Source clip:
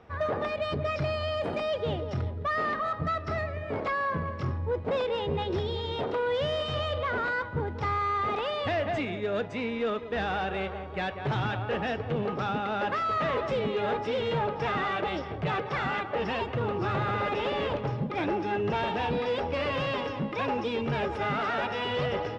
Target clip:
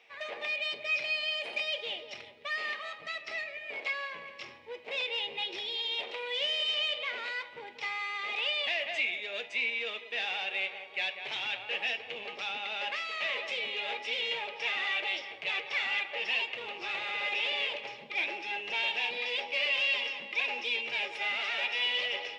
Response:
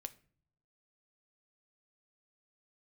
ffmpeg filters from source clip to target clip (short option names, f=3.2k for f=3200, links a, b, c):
-filter_complex "[0:a]highpass=660,highshelf=f=1.8k:t=q:w=3:g=9.5[a];[1:a]atrim=start_sample=2205[b];[a][b]afir=irnorm=-1:irlink=0,volume=-2.5dB"